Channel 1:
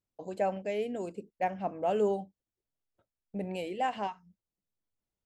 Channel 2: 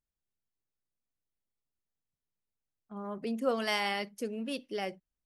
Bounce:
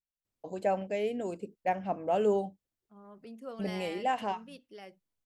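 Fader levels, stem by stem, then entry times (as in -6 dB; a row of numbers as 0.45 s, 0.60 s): +1.0 dB, -13.0 dB; 0.25 s, 0.00 s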